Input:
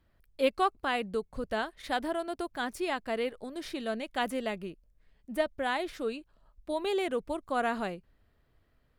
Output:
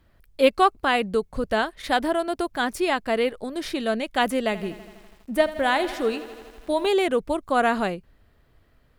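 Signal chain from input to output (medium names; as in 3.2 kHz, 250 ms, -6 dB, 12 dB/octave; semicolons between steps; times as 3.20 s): 4.43–6.87 s: bit-crushed delay 82 ms, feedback 80%, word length 9-bit, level -15 dB; trim +9 dB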